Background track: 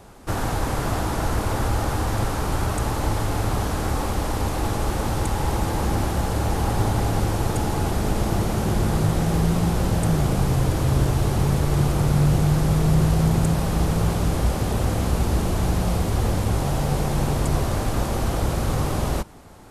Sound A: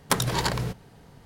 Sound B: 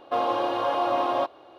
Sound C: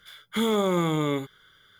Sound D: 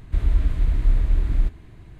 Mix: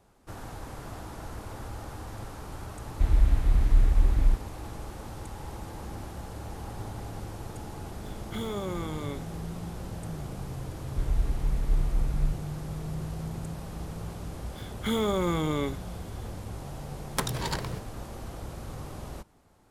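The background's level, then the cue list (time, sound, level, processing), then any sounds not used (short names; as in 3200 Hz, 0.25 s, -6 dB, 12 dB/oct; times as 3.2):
background track -16.5 dB
2.87 add D -2 dB
7.98 add C -11 dB
10.84 add D -10.5 dB + comb 4.3 ms
14.5 add C -3.5 dB
17.07 add A -6.5 dB
not used: B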